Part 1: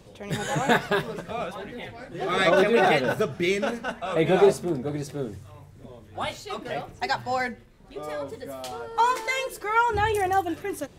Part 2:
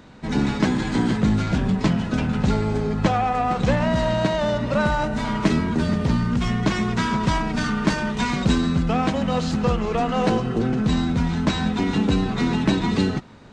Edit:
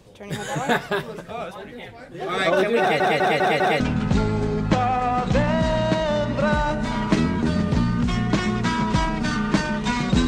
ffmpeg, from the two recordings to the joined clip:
ffmpeg -i cue0.wav -i cue1.wav -filter_complex "[0:a]apad=whole_dur=10.27,atrim=end=10.27,asplit=5[link_01][link_02][link_03][link_04][link_05];[link_01]atrim=end=3.002[link_06];[link_02]atrim=start=2.798:end=3.002[link_07];[link_03]atrim=start=2.798:end=3.002[link_08];[link_04]atrim=start=2.798:end=3.002[link_09];[link_05]atrim=start=2.798:end=3.002[link_10];[1:a]atrim=start=2.128:end=8.6[link_11];[link_06][link_07]acrossfade=duration=0.004:curve1=hsin:curve2=hsin[link_12];[link_12][link_08]acrossfade=duration=0.004:curve1=hsin:curve2=hsin[link_13];[link_13][link_09]acrossfade=duration=0.004:curve1=hsin:curve2=hsin[link_14];[link_14][link_10]acrossfade=duration=0.004:curve1=hsin:curve2=hsin[link_15];[link_15][link_11]acrossfade=duration=0.004:curve1=hsin:curve2=hsin" out.wav

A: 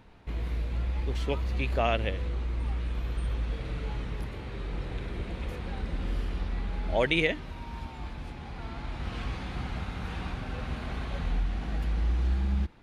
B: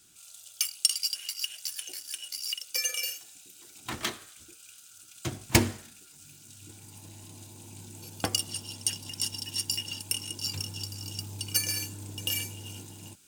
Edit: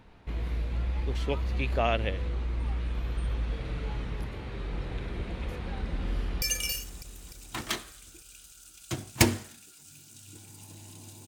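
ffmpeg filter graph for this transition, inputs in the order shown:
ffmpeg -i cue0.wav -i cue1.wav -filter_complex "[0:a]apad=whole_dur=11.27,atrim=end=11.27,atrim=end=6.422[link_01];[1:a]atrim=start=2.758:end=7.61[link_02];[link_01][link_02]acrossfade=duration=0.004:curve1=hsin:curve2=hsin,asplit=2[link_03][link_04];[link_04]afade=type=in:start_time=6.14:duration=0.01,afade=type=out:start_time=6.42:duration=0.01,aecho=0:1:300|600|900|1200|1500|1800|2100|2400|2700:0.398107|0.25877|0.1682|0.10933|0.0710646|0.046192|0.0300248|0.0195161|0.0126855[link_05];[link_03][link_05]amix=inputs=2:normalize=0" out.wav

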